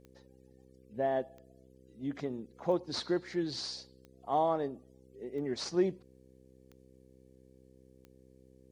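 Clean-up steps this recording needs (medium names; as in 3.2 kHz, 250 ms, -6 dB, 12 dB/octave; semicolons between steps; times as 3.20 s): de-click; de-hum 64.7 Hz, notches 8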